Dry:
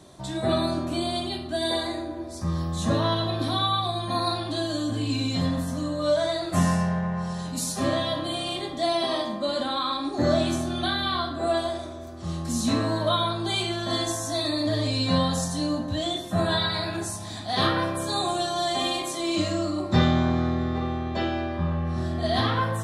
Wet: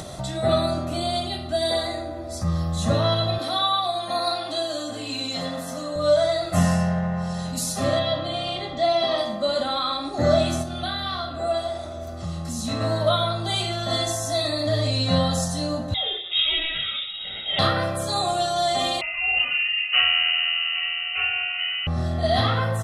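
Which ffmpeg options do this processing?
-filter_complex "[0:a]asettb=1/sr,asplit=3[s0][s1][s2];[s0]atrim=end=3.384[s3];[s1]atrim=start=3.38:end=5.96,asetpts=PTS-STARTPTS,afade=t=in:d=0.004:c=qsin,afade=t=out:st=2.576:d=0.004:c=qsin,highpass=310[s4];[s2]atrim=start=5.956[s5];[s3][s4]acrossfade=d=0.004:c1=hsin:c2=qsin[s6];[s6][s5]acrossfade=d=0.004:c1=qsin:c2=hsin,asettb=1/sr,asplit=3[s7][s8][s9];[s7]atrim=end=7.994[s10];[s8]atrim=start=7.99:end=9.18,asetpts=PTS-STARTPTS,afade=t=in:d=0.004:c=qsin,afade=t=out:st=1.186:d=0.004:c=qsin,lowpass=4900[s11];[s9]atrim=start=9.176[s12];[s10][s11]acrossfade=d=0.004:c1=hsin:c2=qsin[s13];[s13][s12]acrossfade=d=0.004:c1=qsin:c2=hsin,asplit=3[s14][s15][s16];[s14]afade=t=out:st=10.62:d=0.02[s17];[s15]flanger=delay=4.8:depth=8.6:regen=-89:speed=1.6:shape=triangular,afade=t=in:st=10.62:d=0.02,afade=t=out:st=12.8:d=0.02[s18];[s16]afade=t=in:st=12.8:d=0.02[s19];[s17][s18][s19]amix=inputs=3:normalize=0,asettb=1/sr,asplit=3[s20][s21][s22];[s20]atrim=end=15.944[s23];[s21]atrim=start=15.94:end=17.59,asetpts=PTS-STARTPTS,afade=t=in:d=0.004:c=qsin,afade=t=out:st=1.646:d=0.004:c=qsin,lowpass=f=3300:t=q:w=0.5098,lowpass=f=3300:t=q:w=0.6013,lowpass=f=3300:t=q:w=0.9,lowpass=f=3300:t=q:w=2.563,afreqshift=-3900[s24];[s22]atrim=start=17.586[s25];[s23][s24]acrossfade=d=0.004:c1=hsin:c2=qsin[s26];[s26][s25]acrossfade=d=0.004:c1=qsin:c2=hsin,asettb=1/sr,asplit=3[s27][s28][s29];[s27]atrim=end=19.014[s30];[s28]atrim=start=19.01:end=21.87,asetpts=PTS-STARTPTS,afade=t=in:d=0.004:c=qsin,afade=t=out:st=2.856:d=0.004:c=qsin,lowpass=f=2600:t=q:w=0.5098,lowpass=f=2600:t=q:w=0.6013,lowpass=f=2600:t=q:w=0.9,lowpass=f=2600:t=q:w=2.563,afreqshift=-3100[s31];[s29]atrim=start=21.866[s32];[s30][s31]acrossfade=d=0.004:c1=hsin:c2=qsin[s33];[s33][s32]acrossfade=d=0.004:c1=qsin:c2=hsin,acompressor=mode=upward:threshold=0.0398:ratio=2.5,aecho=1:1:1.5:0.51,volume=1.19"

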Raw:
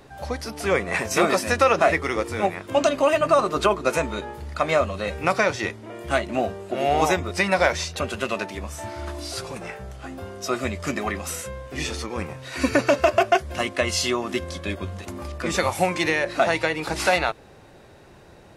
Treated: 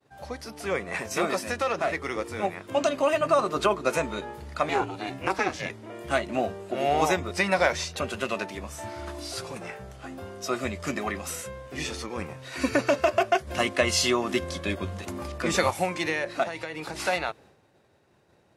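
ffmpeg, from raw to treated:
-filter_complex "[0:a]asettb=1/sr,asplit=3[s0][s1][s2];[s0]atrim=end=1.514[s3];[s1]atrim=start=1.51:end=2.01,asetpts=PTS-STARTPTS,afade=t=in:d=0.004:c=qsin,afade=t=out:st=0.496:d=0.004:c=qsin,aeval=exprs='(tanh(3.98*val(0)+0.4)-tanh(0.4))/3.98':c=same[s4];[s2]atrim=start=2.006[s5];[s3][s4]acrossfade=d=0.004:c1=hsin:c2=qsin[s6];[s6][s5]acrossfade=d=0.004:c1=qsin:c2=hsin,asettb=1/sr,asplit=3[s7][s8][s9];[s7]atrim=end=4.694[s10];[s8]atrim=start=4.69:end=5.7,asetpts=PTS-STARTPTS,afade=t=in:d=0.004:c=qsin,afade=t=out:st=1.006:d=0.004:c=qsin,aeval=exprs='val(0)*sin(2*PI*200*n/s)':c=same[s11];[s9]atrim=start=5.696[s12];[s10][s11]acrossfade=d=0.004:c1=hsin:c2=qsin[s13];[s13][s12]acrossfade=d=0.004:c1=qsin:c2=hsin,asettb=1/sr,asplit=3[s14][s15][s16];[s14]atrim=end=13.474[s17];[s15]atrim=start=13.47:end=15.71,asetpts=PTS-STARTPTS,afade=t=in:d=0.004:c=qsin,afade=t=out:st=2.236:d=0.004:c=qsin,acontrast=24[s18];[s16]atrim=start=15.706[s19];[s17][s18]acrossfade=d=0.004:c1=hsin:c2=qsin[s20];[s20][s19]acrossfade=d=0.004:c1=qsin:c2=hsin,asettb=1/sr,asplit=3[s21][s22][s23];[s21]atrim=end=16.434[s24];[s22]atrim=start=16.43:end=16.95,asetpts=PTS-STARTPTS,afade=t=in:d=0.004:c=qsin,afade=t=out:st=0.516:d=0.004:c=qsin,acompressor=threshold=0.0708:ratio=6:attack=3.2:release=140:knee=1:detection=peak[s25];[s23]atrim=start=16.946[s26];[s24][s25]acrossfade=d=0.004:c1=hsin:c2=qsin[s27];[s27][s26]acrossfade=d=0.004:c1=qsin:c2=hsin,agate=range=0.0224:threshold=0.00794:ratio=3:detection=peak,highpass=81,dynaudnorm=f=450:g=13:m=3.76,volume=0.447"

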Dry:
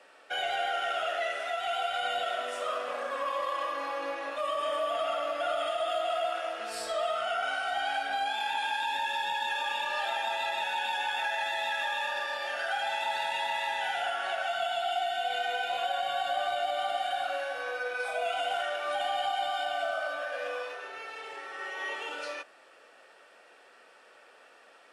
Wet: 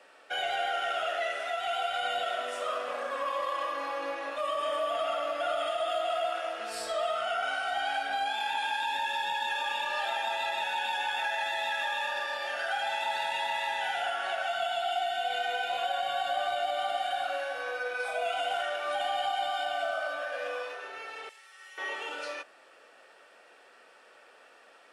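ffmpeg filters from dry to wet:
-filter_complex "[0:a]asettb=1/sr,asplit=3[s0][s1][s2];[s0]atrim=end=21.294[s3];[s1]atrim=start=21.29:end=21.78,asetpts=PTS-STARTPTS,afade=t=in:d=0.004:c=qsin,afade=t=out:st=0.486:d=0.004:c=qsin,aderivative[s4];[s2]atrim=start=21.776[s5];[s3][s4]acrossfade=d=0.004:c1=hsin:c2=qsin[s6];[s6][s5]acrossfade=d=0.004:c1=qsin:c2=hsin"

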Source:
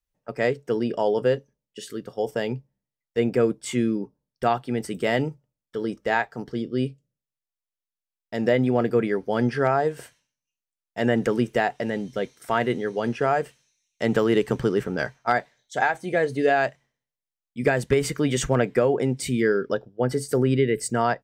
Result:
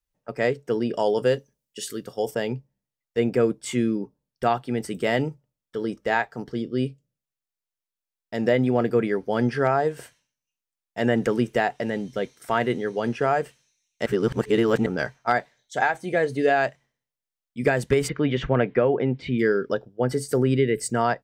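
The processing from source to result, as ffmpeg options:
-filter_complex "[0:a]asettb=1/sr,asplit=3[s0][s1][s2];[s0]atrim=end=0.944[s3];[s1]atrim=start=0.94:end=2.35,asetpts=PTS-STARTPTS,afade=t=in:d=0.004:c=qsin,afade=t=out:st=1.406:d=0.004:c=qsin,highshelf=f=4100:g=10[s4];[s2]atrim=start=2.346[s5];[s3][s4]acrossfade=d=0.004:c1=hsin:c2=qsin[s6];[s6][s5]acrossfade=d=0.004:c1=qsin:c2=hsin,asplit=3[s7][s8][s9];[s7]afade=t=out:st=18.07:d=0.02[s10];[s8]lowpass=f=3400:w=0.5412,lowpass=f=3400:w=1.3066,afade=t=in:st=18.07:d=0.02,afade=t=out:st=19.38:d=0.02[s11];[s9]afade=t=in:st=19.38:d=0.02[s12];[s10][s11][s12]amix=inputs=3:normalize=0,asplit=3[s13][s14][s15];[s13]atrim=end=14.062[s16];[s14]atrim=start=14.058:end=14.862,asetpts=PTS-STARTPTS,areverse[s17];[s15]atrim=start=14.858[s18];[s16][s17]acrossfade=d=0.004:c1=hsin:c2=hsin[s19];[s19][s18]acrossfade=d=0.004:c1=hsin:c2=hsin"

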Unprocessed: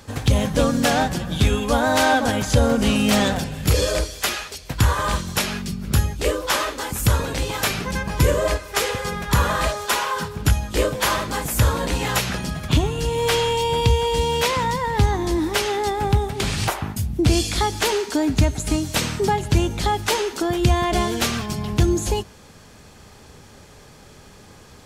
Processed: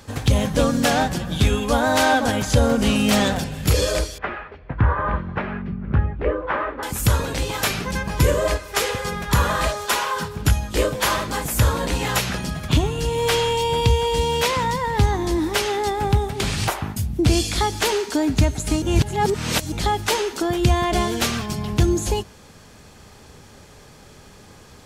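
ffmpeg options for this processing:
-filter_complex "[0:a]asettb=1/sr,asplit=3[s0][s1][s2];[s0]atrim=end=4.184[s3];[s1]atrim=start=4.18:end=6.83,asetpts=PTS-STARTPTS,afade=t=in:d=0.004:c=qsin,afade=t=out:st=2.646:d=0.004:c=qsin,lowpass=f=1900:w=0.5412,lowpass=f=1900:w=1.3066[s4];[s2]atrim=start=6.826[s5];[s3][s4]acrossfade=d=0.004:c1=hsin:c2=qsin[s6];[s6][s5]acrossfade=d=0.004:c1=qsin:c2=hsin,asplit=3[s7][s8][s9];[s7]atrim=end=18.822[s10];[s8]atrim=start=18.818:end=19.722,asetpts=PTS-STARTPTS,areverse[s11];[s9]atrim=start=19.718[s12];[s10][s11]acrossfade=d=0.004:c1=hsin:c2=hsin[s13];[s13][s12]acrossfade=d=0.004:c1=hsin:c2=hsin"

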